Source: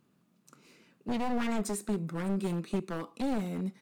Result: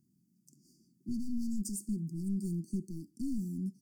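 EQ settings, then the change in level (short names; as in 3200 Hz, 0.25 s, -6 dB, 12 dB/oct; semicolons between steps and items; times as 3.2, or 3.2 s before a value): brick-wall FIR band-stop 390–4400 Hz; fixed phaser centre 1200 Hz, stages 4; 0.0 dB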